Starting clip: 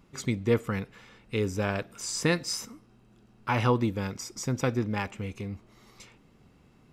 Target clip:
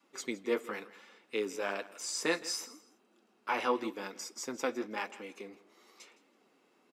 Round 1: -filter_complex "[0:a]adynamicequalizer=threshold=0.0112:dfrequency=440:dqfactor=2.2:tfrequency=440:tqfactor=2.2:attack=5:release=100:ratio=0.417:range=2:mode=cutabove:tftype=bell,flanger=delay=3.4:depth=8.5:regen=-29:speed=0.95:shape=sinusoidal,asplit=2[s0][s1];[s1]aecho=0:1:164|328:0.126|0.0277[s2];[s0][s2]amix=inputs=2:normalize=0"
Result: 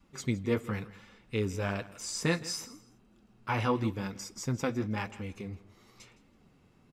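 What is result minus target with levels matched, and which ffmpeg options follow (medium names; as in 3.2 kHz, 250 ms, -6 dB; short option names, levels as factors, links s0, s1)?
250 Hz band +4.0 dB
-filter_complex "[0:a]adynamicequalizer=threshold=0.0112:dfrequency=440:dqfactor=2.2:tfrequency=440:tqfactor=2.2:attack=5:release=100:ratio=0.417:range=2:mode=cutabove:tftype=bell,highpass=f=300:w=0.5412,highpass=f=300:w=1.3066,flanger=delay=3.4:depth=8.5:regen=-29:speed=0.95:shape=sinusoidal,asplit=2[s0][s1];[s1]aecho=0:1:164|328:0.126|0.0277[s2];[s0][s2]amix=inputs=2:normalize=0"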